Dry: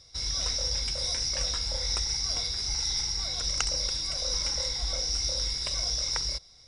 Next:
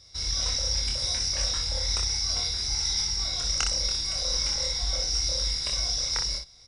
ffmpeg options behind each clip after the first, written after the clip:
-filter_complex "[0:a]equalizer=f=550:t=o:w=1.5:g=-2,asplit=2[s0][s1];[s1]aecho=0:1:25|60:0.668|0.473[s2];[s0][s2]amix=inputs=2:normalize=0"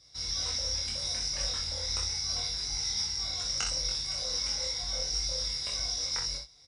-filter_complex "[0:a]highpass=51,flanger=delay=6:depth=6.3:regen=-37:speed=0.77:shape=triangular,asplit=2[s0][s1];[s1]adelay=21,volume=0.562[s2];[s0][s2]amix=inputs=2:normalize=0,volume=0.794"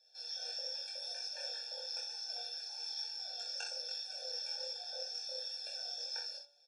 -af "highpass=150,lowpass=7100,bandreject=f=287:t=h:w=4,bandreject=f=574:t=h:w=4,bandreject=f=861:t=h:w=4,bandreject=f=1148:t=h:w=4,bandreject=f=1435:t=h:w=4,bandreject=f=1722:t=h:w=4,bandreject=f=2009:t=h:w=4,bandreject=f=2296:t=h:w=4,bandreject=f=2583:t=h:w=4,bandreject=f=2870:t=h:w=4,bandreject=f=3157:t=h:w=4,bandreject=f=3444:t=h:w=4,bandreject=f=3731:t=h:w=4,bandreject=f=4018:t=h:w=4,bandreject=f=4305:t=h:w=4,bandreject=f=4592:t=h:w=4,bandreject=f=4879:t=h:w=4,bandreject=f=5166:t=h:w=4,bandreject=f=5453:t=h:w=4,bandreject=f=5740:t=h:w=4,bandreject=f=6027:t=h:w=4,bandreject=f=6314:t=h:w=4,bandreject=f=6601:t=h:w=4,bandreject=f=6888:t=h:w=4,bandreject=f=7175:t=h:w=4,bandreject=f=7462:t=h:w=4,bandreject=f=7749:t=h:w=4,bandreject=f=8036:t=h:w=4,bandreject=f=8323:t=h:w=4,bandreject=f=8610:t=h:w=4,bandreject=f=8897:t=h:w=4,bandreject=f=9184:t=h:w=4,bandreject=f=9471:t=h:w=4,bandreject=f=9758:t=h:w=4,bandreject=f=10045:t=h:w=4,afftfilt=real='re*eq(mod(floor(b*sr/1024/460),2),1)':imag='im*eq(mod(floor(b*sr/1024/460),2),1)':win_size=1024:overlap=0.75,volume=0.562"

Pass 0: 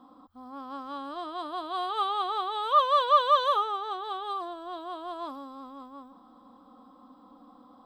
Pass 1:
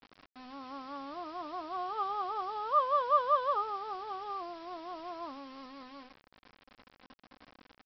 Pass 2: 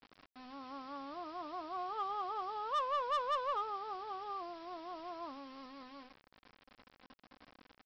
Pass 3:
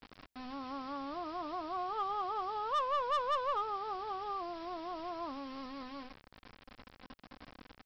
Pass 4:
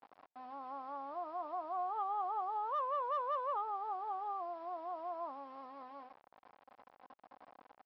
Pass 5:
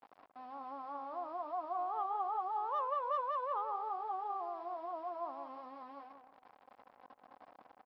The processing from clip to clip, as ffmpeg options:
-af "lowpass=1500,aresample=11025,acrusher=bits=7:mix=0:aa=0.000001,aresample=44100,volume=0.596"
-af "asoftclip=type=tanh:threshold=0.0473,volume=0.708"
-filter_complex "[0:a]lowshelf=f=140:g=9.5,asplit=2[s0][s1];[s1]acompressor=threshold=0.00447:ratio=6,volume=1[s2];[s0][s2]amix=inputs=2:normalize=0"
-af "bandpass=f=790:t=q:w=2.3:csg=0,volume=1.33"
-filter_complex "[0:a]asplit=2[s0][s1];[s1]adelay=181,lowpass=f=1600:p=1,volume=0.447,asplit=2[s2][s3];[s3]adelay=181,lowpass=f=1600:p=1,volume=0.27,asplit=2[s4][s5];[s5]adelay=181,lowpass=f=1600:p=1,volume=0.27[s6];[s0][s2][s4][s6]amix=inputs=4:normalize=0"

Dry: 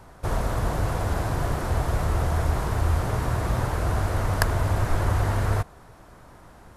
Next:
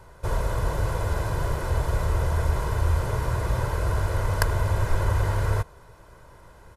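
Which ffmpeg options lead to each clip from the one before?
-af "aecho=1:1:2:0.54,volume=0.75"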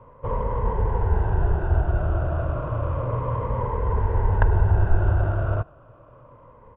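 -filter_complex "[0:a]afftfilt=real='re*pow(10,14/40*sin(2*PI*(0.94*log(max(b,1)*sr/1024/100)/log(2)-(-0.31)*(pts-256)/sr)))':imag='im*pow(10,14/40*sin(2*PI*(0.94*log(max(b,1)*sr/1024/100)/log(2)-(-0.31)*(pts-256)/sr)))':win_size=1024:overlap=0.75,acrossover=split=680|1600[s0][s1][s2];[s2]acrusher=samples=21:mix=1:aa=0.000001[s3];[s0][s1][s3]amix=inputs=3:normalize=0,lowpass=f=2300:w=0.5412,lowpass=f=2300:w=1.3066"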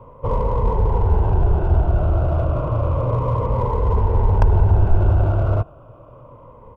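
-filter_complex "[0:a]asplit=2[s0][s1];[s1]asoftclip=type=hard:threshold=0.075,volume=0.708[s2];[s0][s2]amix=inputs=2:normalize=0,equalizer=f=1700:w=2.8:g=-13.5,volume=1.26"

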